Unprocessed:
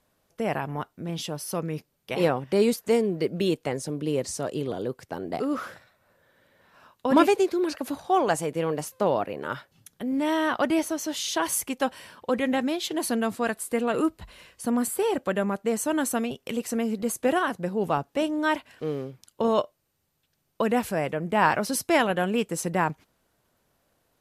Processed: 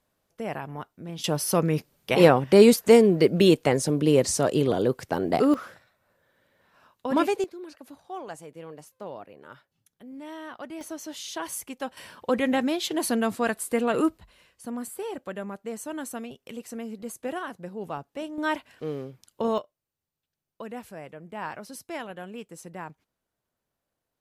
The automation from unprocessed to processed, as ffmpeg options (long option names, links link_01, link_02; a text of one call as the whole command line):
ffmpeg -i in.wav -af "asetnsamples=nb_out_samples=441:pad=0,asendcmd='1.24 volume volume 7dB;5.54 volume volume -4.5dB;7.44 volume volume -15dB;10.81 volume volume -7.5dB;11.97 volume volume 1dB;14.18 volume volume -9dB;18.38 volume volume -2.5dB;19.58 volume volume -14dB',volume=-5dB" out.wav